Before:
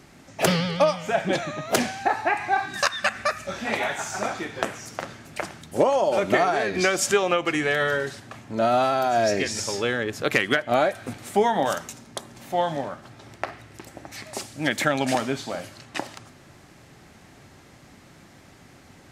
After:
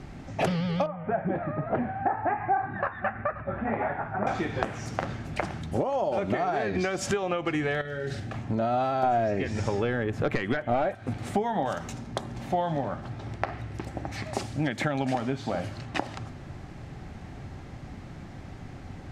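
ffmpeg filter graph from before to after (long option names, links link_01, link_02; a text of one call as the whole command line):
ffmpeg -i in.wav -filter_complex "[0:a]asettb=1/sr,asplit=3[link_01][link_02][link_03];[link_01]atrim=end=0.864[link_04];[link_02]atrim=start=0.86:end=4.27,asetpts=PTS-STARTPTS,afade=type=in:duration=0.004:curve=qsin,afade=type=out:start_time=3.406:duration=0.004:curve=qsin,lowpass=frequency=1800:width=0.5412,lowpass=frequency=1800:width=1.3066,aecho=1:1:529:0.119,atrim=end_sample=150381,flanger=delay=5.3:depth=7.5:regen=-55:speed=1.2:shape=triangular[link_05];[link_03]atrim=start=4.266[link_06];[link_04][link_05]acrossfade=duration=0.004:curve1=hsin:curve2=qsin[link_07];[link_07][link_06]acrossfade=duration=0.004:curve1=qsin:curve2=hsin,asettb=1/sr,asplit=3[link_08][link_09][link_10];[link_08]atrim=end=7.814[link_11];[link_09]atrim=start=7.81:end=8.34,asetpts=PTS-STARTPTS,afade=type=in:duration=0.004:curve=qsin,afade=type=out:start_time=0.526:duration=0.004:curve=qsin,equalizer=frequency=1000:width=3.7:gain=-12.5,acompressor=threshold=-32dB:ratio=12:attack=3.2:release=140:knee=1:detection=peak,asplit=2[link_12][link_13];[link_13]adelay=41,volume=-9dB[link_14];[link_12][link_14]amix=inputs=2:normalize=0,atrim=end_sample=23373[link_15];[link_10]atrim=start=8.336[link_16];[link_11][link_15]acrossfade=duration=0.004:curve1=hsin:curve2=qsin[link_17];[link_17][link_16]acrossfade=duration=0.004:curve1=qsin:curve2=hsin,asettb=1/sr,asplit=3[link_18][link_19][link_20];[link_18]atrim=end=9.034[link_21];[link_19]atrim=start=9.03:end=10.95,asetpts=PTS-STARTPTS,afade=type=in:duration=0.004:curve=qsin,afade=type=out:start_time=1.916:duration=0.004:curve=qsin,acrossover=split=4500[link_22][link_23];[link_23]acompressor=threshold=-42dB:ratio=4:attack=1:release=60[link_24];[link_22][link_24]amix=inputs=2:normalize=0,equalizer=frequency=4700:width=1.5:gain=-7,aeval=exprs='0.501*sin(PI/2*1.78*val(0)/0.501)':channel_layout=same[link_25];[link_20]atrim=start=10.946[link_26];[link_21][link_25]acrossfade=duration=0.004:curve1=hsin:curve2=qsin[link_27];[link_27][link_26]acrossfade=duration=0.004:curve1=qsin:curve2=hsin,aemphasis=mode=reproduction:type=bsi,acompressor=threshold=-27dB:ratio=10,equalizer=frequency=770:width=5.6:gain=4.5,volume=2.5dB" out.wav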